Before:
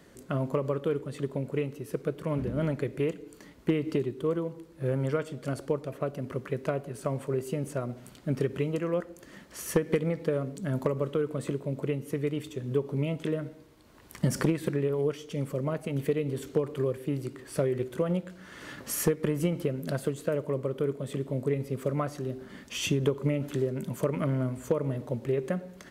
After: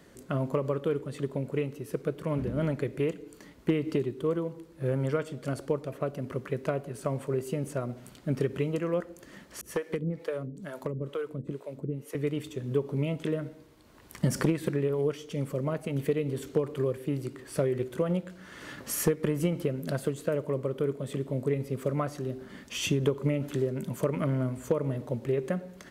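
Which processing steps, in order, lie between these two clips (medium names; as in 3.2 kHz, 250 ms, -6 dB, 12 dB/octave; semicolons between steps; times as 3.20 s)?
9.61–12.15 s: harmonic tremolo 2.2 Hz, depth 100%, crossover 410 Hz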